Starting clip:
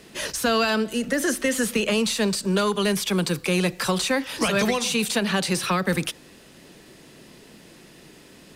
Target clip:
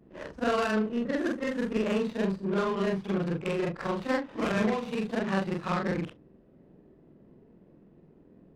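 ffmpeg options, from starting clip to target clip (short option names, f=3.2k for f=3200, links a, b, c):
-af "afftfilt=real='re':imag='-im':win_size=4096:overlap=0.75,adynamicsmooth=sensitivity=2:basefreq=510"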